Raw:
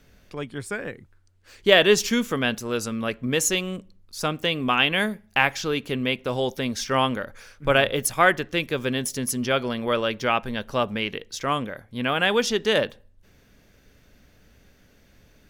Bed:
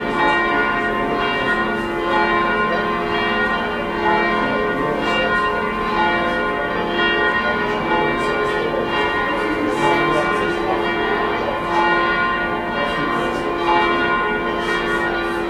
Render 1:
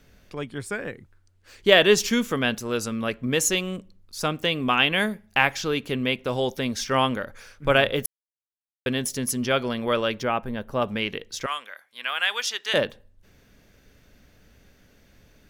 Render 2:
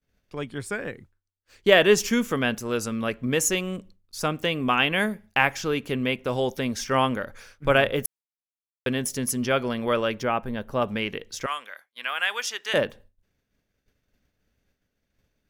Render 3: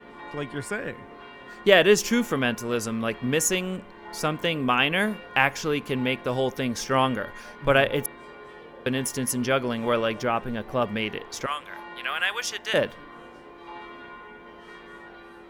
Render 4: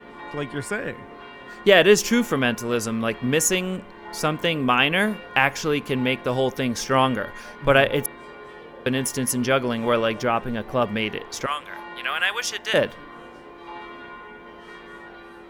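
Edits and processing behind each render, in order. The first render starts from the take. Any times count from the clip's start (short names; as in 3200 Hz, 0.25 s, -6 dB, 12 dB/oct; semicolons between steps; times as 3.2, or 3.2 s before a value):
8.06–8.86 mute; 10.23–10.82 bell 4700 Hz -11.5 dB 2.5 oct; 11.46–12.74 HPF 1300 Hz
expander -43 dBFS; dynamic EQ 3900 Hz, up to -7 dB, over -41 dBFS, Q 2
add bed -25 dB
gain +3 dB; limiter -3 dBFS, peak gain reduction 2.5 dB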